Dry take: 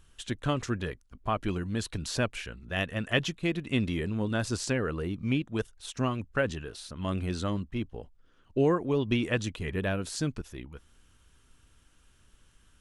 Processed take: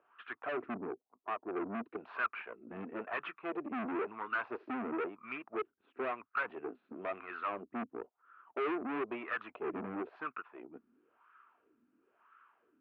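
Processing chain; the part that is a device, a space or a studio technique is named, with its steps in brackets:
0:00.74–0:01.86: Butterworth low-pass 850 Hz 36 dB per octave
wah-wah guitar rig (LFO wah 0.99 Hz 230–1,300 Hz, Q 4.8; tube saturation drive 47 dB, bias 0.65; loudspeaker in its box 91–3,500 Hz, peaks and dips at 170 Hz −6 dB, 280 Hz −4 dB, 540 Hz −9 dB, 840 Hz −4 dB, 1,300 Hz +4 dB, 2,500 Hz +8 dB)
three-way crossover with the lows and the highs turned down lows −20 dB, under 240 Hz, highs −19 dB, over 2,200 Hz
level +17.5 dB

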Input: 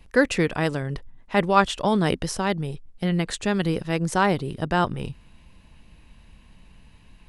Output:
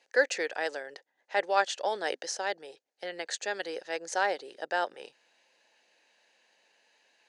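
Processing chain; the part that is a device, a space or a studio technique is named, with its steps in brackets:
phone speaker on a table (loudspeaker in its box 420–8,700 Hz, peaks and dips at 540 Hz +5 dB, 790 Hz +5 dB, 1,100 Hz −9 dB, 1,700 Hz +8 dB, 4,500 Hz +7 dB, 6,400 Hz +10 dB)
level −8.5 dB

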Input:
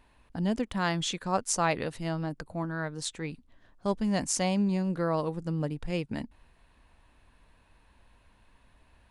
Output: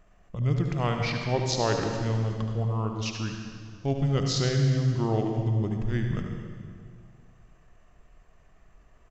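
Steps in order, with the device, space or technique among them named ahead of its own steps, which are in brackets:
monster voice (pitch shifter −6.5 semitones; low-shelf EQ 120 Hz +4.5 dB; single-tap delay 73 ms −10.5 dB; convolution reverb RT60 2.0 s, pre-delay 77 ms, DRR 4 dB)

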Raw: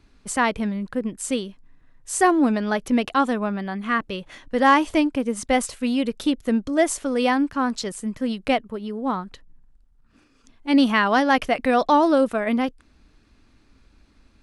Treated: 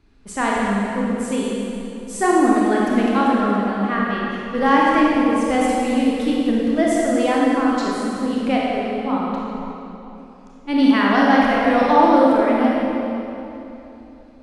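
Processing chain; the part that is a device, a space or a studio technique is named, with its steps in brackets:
swimming-pool hall (convolution reverb RT60 3.1 s, pre-delay 25 ms, DRR −5 dB; high-shelf EQ 4,100 Hz −6.5 dB)
level −2.5 dB

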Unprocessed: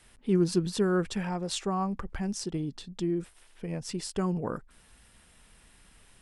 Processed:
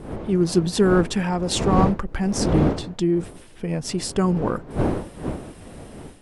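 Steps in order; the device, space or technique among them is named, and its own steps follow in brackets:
smartphone video outdoors (wind on the microphone 380 Hz −36 dBFS; automatic gain control gain up to 7 dB; level +2 dB; AAC 96 kbit/s 48,000 Hz)

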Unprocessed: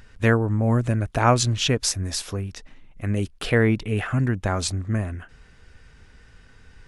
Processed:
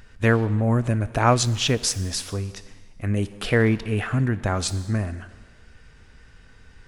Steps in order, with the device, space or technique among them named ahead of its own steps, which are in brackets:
saturated reverb return (on a send at −10 dB: convolution reverb RT60 1.3 s, pre-delay 18 ms + soft clipping −27 dBFS, distortion −6 dB)

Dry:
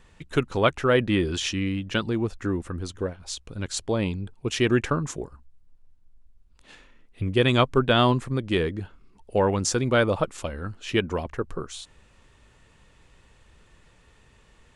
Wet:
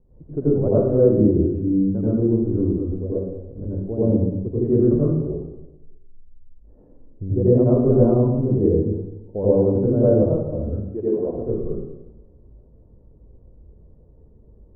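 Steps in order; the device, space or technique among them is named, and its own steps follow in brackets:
0:10.69–0:11.25: high-pass filter 570 Hz → 210 Hz 12 dB per octave
next room (low-pass filter 550 Hz 24 dB per octave; convolution reverb RT60 0.95 s, pre-delay 79 ms, DRR −9.5 dB)
level −3 dB

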